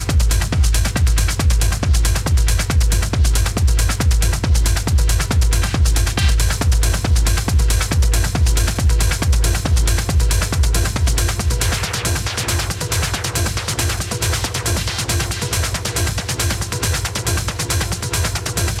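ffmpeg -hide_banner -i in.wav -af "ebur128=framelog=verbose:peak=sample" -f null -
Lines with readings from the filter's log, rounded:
Integrated loudness:
  I:         -17.8 LUFS
  Threshold: -27.8 LUFS
Loudness range:
  LRA:         2.7 LU
  Threshold: -37.8 LUFS
  LRA low:   -19.6 LUFS
  LRA high:  -16.8 LUFS
Sample peak:
  Peak:       -6.2 dBFS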